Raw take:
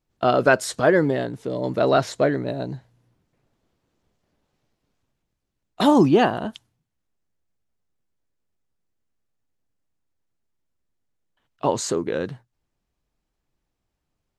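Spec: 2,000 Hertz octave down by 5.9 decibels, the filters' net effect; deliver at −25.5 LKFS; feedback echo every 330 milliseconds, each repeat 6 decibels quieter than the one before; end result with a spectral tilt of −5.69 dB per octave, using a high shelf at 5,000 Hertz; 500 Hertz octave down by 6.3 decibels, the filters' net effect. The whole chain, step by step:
parametric band 500 Hz −8 dB
parametric band 2,000 Hz −7 dB
high-shelf EQ 5,000 Hz −8.5 dB
repeating echo 330 ms, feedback 50%, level −6 dB

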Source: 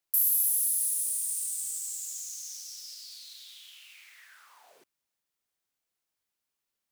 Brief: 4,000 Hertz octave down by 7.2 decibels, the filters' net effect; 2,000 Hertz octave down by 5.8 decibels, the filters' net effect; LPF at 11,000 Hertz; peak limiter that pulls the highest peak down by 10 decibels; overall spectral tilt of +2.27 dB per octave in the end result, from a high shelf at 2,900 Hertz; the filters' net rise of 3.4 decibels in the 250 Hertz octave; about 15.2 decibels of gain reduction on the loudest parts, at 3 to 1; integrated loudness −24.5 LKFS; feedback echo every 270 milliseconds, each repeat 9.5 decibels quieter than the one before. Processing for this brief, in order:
low-pass filter 11,000 Hz
parametric band 250 Hz +5.5 dB
parametric band 2,000 Hz −4 dB
high-shelf EQ 2,900 Hz −5.5 dB
parametric band 4,000 Hz −3.5 dB
downward compressor 3 to 1, threshold −53 dBFS
brickwall limiter −43 dBFS
repeating echo 270 ms, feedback 33%, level −9.5 dB
level +27 dB

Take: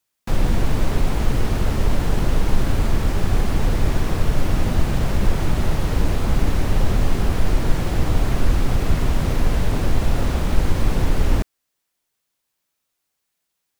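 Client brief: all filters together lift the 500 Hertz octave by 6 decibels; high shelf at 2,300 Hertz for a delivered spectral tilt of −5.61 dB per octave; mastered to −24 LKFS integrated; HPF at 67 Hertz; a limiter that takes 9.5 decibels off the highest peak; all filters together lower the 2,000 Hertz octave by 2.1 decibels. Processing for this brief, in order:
high-pass filter 67 Hz
parametric band 500 Hz +7.5 dB
parametric band 2,000 Hz −6 dB
high-shelf EQ 2,300 Hz +5.5 dB
level +2.5 dB
brickwall limiter −14.5 dBFS

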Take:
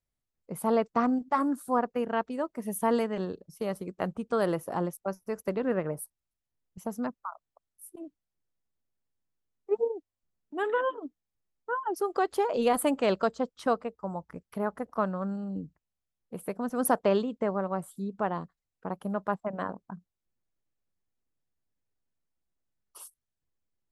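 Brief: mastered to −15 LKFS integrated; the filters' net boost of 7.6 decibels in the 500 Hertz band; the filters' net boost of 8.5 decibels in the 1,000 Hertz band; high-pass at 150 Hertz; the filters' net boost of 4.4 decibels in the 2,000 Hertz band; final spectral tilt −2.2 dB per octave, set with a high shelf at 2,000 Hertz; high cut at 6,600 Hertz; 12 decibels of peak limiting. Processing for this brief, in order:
high-pass filter 150 Hz
low-pass filter 6,600 Hz
parametric band 500 Hz +7 dB
parametric band 1,000 Hz +8.5 dB
high-shelf EQ 2,000 Hz −4.5 dB
parametric band 2,000 Hz +4 dB
level +13 dB
brickwall limiter −2.5 dBFS

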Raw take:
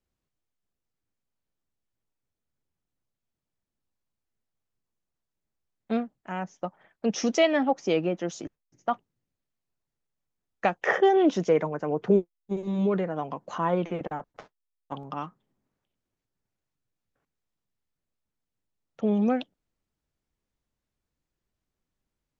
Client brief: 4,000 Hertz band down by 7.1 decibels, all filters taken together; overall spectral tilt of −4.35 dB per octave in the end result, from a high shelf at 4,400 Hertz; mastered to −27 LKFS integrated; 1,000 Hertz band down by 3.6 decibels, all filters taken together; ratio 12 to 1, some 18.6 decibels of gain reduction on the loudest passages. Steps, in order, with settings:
parametric band 1,000 Hz −4.5 dB
parametric band 4,000 Hz −6 dB
high-shelf EQ 4,400 Hz −8.5 dB
downward compressor 12 to 1, threshold −36 dBFS
level +15 dB

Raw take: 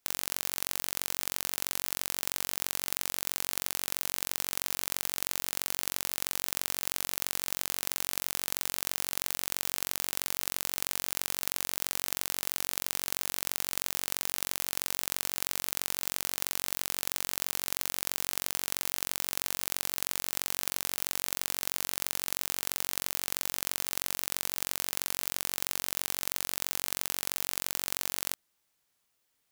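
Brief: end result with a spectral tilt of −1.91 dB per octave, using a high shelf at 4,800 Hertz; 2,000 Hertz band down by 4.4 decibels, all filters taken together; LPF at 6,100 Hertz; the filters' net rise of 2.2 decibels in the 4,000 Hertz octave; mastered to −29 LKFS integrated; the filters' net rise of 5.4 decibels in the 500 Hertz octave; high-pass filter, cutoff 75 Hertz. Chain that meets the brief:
high-pass filter 75 Hz
low-pass filter 6,100 Hz
parametric band 500 Hz +7 dB
parametric band 2,000 Hz −8 dB
parametric band 4,000 Hz +4 dB
high-shelf EQ 4,800 Hz +3.5 dB
level +6 dB

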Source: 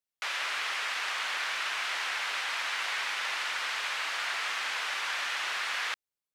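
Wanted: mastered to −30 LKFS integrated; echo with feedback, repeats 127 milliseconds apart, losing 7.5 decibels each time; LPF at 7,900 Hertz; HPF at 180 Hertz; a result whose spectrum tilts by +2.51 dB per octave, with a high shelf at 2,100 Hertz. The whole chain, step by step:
high-pass filter 180 Hz
low-pass filter 7,900 Hz
high-shelf EQ 2,100 Hz +8 dB
repeating echo 127 ms, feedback 42%, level −7.5 dB
level −4 dB

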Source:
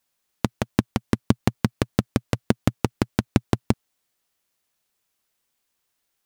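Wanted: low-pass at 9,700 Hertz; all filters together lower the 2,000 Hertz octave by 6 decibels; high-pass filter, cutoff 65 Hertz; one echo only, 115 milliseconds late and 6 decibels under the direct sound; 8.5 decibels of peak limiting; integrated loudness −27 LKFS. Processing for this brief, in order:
high-pass filter 65 Hz
low-pass filter 9,700 Hz
parametric band 2,000 Hz −8 dB
brickwall limiter −12 dBFS
single-tap delay 115 ms −6 dB
level +5 dB

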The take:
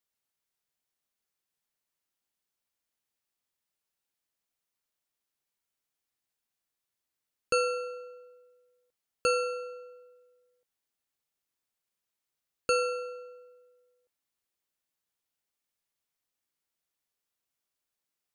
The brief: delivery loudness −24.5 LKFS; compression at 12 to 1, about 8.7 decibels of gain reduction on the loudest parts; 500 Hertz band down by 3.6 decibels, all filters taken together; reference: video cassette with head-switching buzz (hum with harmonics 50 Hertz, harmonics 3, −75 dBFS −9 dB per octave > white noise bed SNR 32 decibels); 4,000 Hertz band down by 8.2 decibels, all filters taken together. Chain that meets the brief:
parametric band 500 Hz −3.5 dB
parametric band 4,000 Hz −9 dB
downward compressor 12 to 1, threshold −33 dBFS
hum with harmonics 50 Hz, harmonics 3, −75 dBFS −9 dB per octave
white noise bed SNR 32 dB
level +16.5 dB

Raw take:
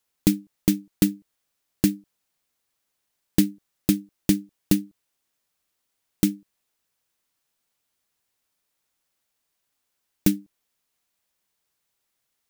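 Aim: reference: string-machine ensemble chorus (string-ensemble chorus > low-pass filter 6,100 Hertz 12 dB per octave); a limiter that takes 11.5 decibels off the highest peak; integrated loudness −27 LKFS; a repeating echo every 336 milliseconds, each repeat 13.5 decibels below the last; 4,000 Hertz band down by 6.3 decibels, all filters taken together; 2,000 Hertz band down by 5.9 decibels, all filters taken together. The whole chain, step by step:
parametric band 2,000 Hz −5.5 dB
parametric band 4,000 Hz −5.5 dB
brickwall limiter −15.5 dBFS
repeating echo 336 ms, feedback 21%, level −13.5 dB
string-ensemble chorus
low-pass filter 6,100 Hz 12 dB per octave
level +8.5 dB

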